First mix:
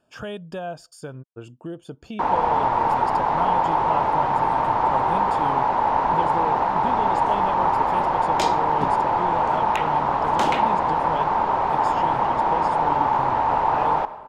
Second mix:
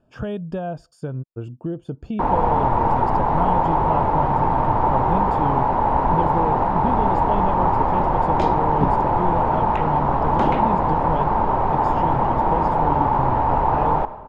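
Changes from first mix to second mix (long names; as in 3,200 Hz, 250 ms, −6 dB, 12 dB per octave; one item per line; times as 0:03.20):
second sound: add low-pass filter 2,900 Hz 6 dB per octave
master: add spectral tilt −3.5 dB per octave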